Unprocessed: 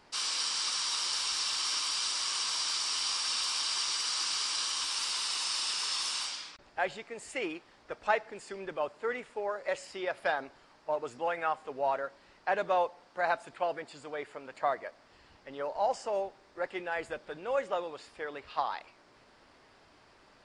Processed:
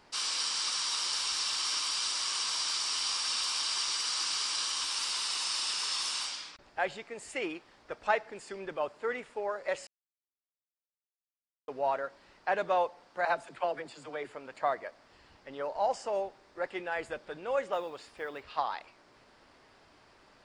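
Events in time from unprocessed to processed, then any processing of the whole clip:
9.87–11.68 s: mute
13.25–14.35 s: phase dispersion lows, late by 54 ms, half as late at 310 Hz
17.73–18.44 s: block-companded coder 7-bit

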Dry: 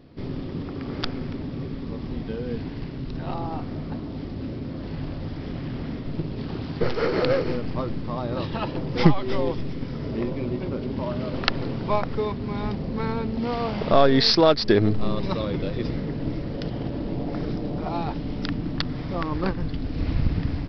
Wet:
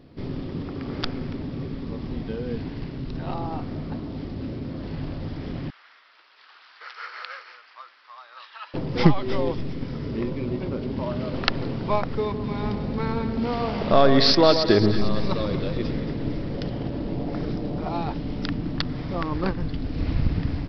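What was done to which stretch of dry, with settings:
5.70–8.74 s: ladder high-pass 1.1 kHz, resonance 40%
9.99–10.48 s: peaking EQ 680 Hz -6.5 dB 0.56 oct
12.21–16.74 s: two-band feedback delay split 1.4 kHz, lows 129 ms, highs 226 ms, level -9 dB

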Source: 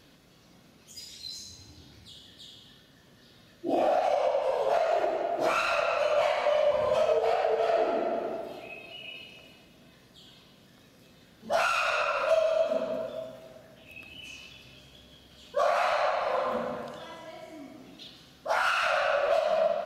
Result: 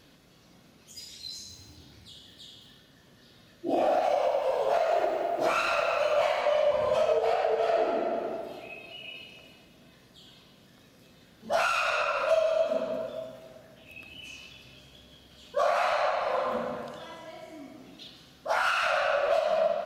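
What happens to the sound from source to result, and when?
1.28–6.41 s: bit-crushed delay 211 ms, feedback 35%, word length 8-bit, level -14.5 dB

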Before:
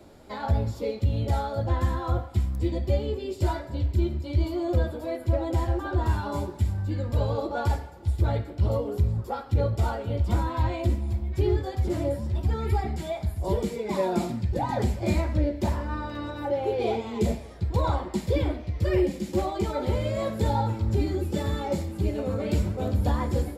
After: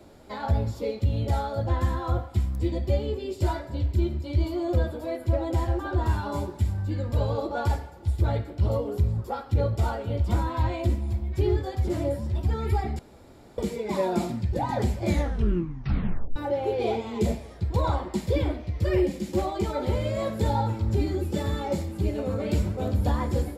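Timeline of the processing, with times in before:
12.99–13.58 s: room tone
15.07 s: tape stop 1.29 s

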